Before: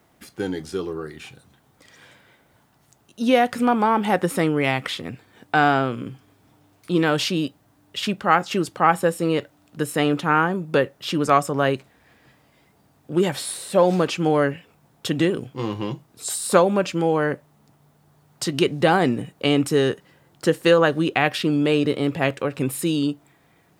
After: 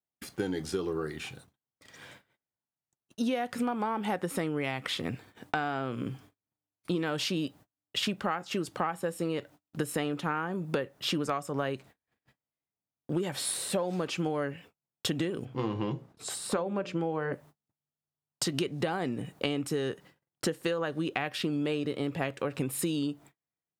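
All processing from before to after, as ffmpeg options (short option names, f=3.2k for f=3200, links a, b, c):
-filter_complex "[0:a]asettb=1/sr,asplit=3[a][b][c];[a]atrim=end=15.454[d];[b]atrim=start=15.45:end=17.33,asetpts=PTS-STARTPTS,afade=t=in:d=0.004:c=qsin,afade=t=out:st=1.876:d=0.004:c=qsin,lowpass=f=2.3k:p=1,bandreject=f=60:t=h:w=6,bandreject=f=120:t=h:w=6,bandreject=f=180:t=h:w=6,bandreject=f=240:t=h:w=6,bandreject=f=300:t=h:w=6,bandreject=f=360:t=h:w=6,bandreject=f=420:t=h:w=6,bandreject=f=480:t=h:w=6,bandreject=f=540:t=h:w=6,bandreject=f=600:t=h:w=6[e];[c]atrim=start=17.326[f];[d][e]acrossfade=d=0.004:c1=hsin:c2=qsin[g];[g][f]acrossfade=d=0.004:c1=qsin:c2=hsin,acompressor=threshold=-27dB:ratio=16,agate=range=-40dB:threshold=-51dB:ratio=16:detection=peak"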